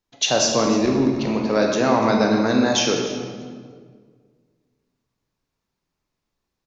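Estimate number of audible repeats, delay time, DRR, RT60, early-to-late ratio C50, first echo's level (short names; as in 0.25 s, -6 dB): 1, 0.292 s, 1.0 dB, 1.8 s, 2.5 dB, -17.0 dB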